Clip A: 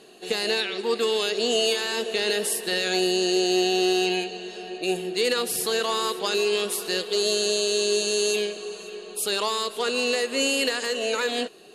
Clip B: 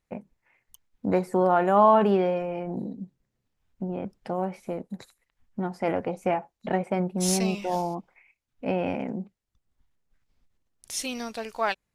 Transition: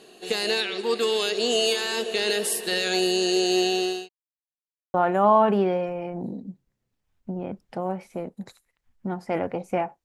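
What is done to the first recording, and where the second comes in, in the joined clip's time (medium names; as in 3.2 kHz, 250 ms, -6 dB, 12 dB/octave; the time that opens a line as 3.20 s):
clip A
3.56–4.09 s: fade out equal-power
4.09–4.94 s: mute
4.94 s: go over to clip B from 1.47 s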